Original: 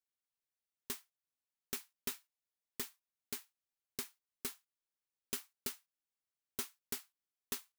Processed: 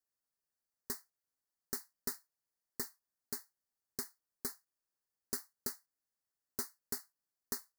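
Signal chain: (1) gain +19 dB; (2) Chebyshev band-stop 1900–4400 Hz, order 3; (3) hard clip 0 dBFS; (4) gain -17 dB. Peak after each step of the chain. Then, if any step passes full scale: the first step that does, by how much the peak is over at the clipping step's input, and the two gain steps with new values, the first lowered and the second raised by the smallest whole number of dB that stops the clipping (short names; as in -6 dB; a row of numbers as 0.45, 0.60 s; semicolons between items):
-5.0, -4.0, -4.0, -21.0 dBFS; no overload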